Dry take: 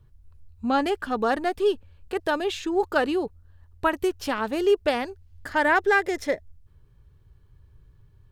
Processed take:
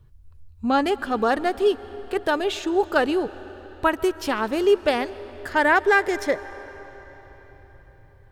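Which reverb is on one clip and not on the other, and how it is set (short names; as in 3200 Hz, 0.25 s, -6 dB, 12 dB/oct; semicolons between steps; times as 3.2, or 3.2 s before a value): digital reverb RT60 4.6 s, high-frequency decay 0.85×, pre-delay 90 ms, DRR 16.5 dB; gain +2.5 dB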